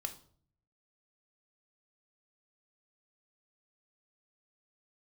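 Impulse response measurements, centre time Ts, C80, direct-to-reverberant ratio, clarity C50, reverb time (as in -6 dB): 8 ms, 17.5 dB, 5.5 dB, 13.0 dB, 0.50 s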